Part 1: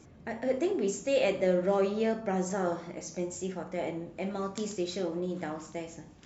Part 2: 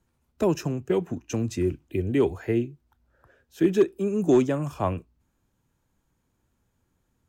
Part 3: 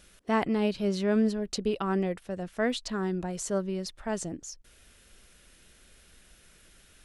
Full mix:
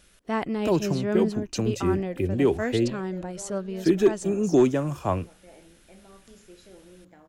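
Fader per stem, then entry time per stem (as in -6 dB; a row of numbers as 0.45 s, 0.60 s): -17.5 dB, +0.5 dB, -1.0 dB; 1.70 s, 0.25 s, 0.00 s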